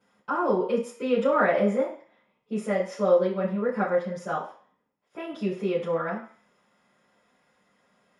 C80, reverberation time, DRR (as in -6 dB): 11.5 dB, 0.45 s, -13.0 dB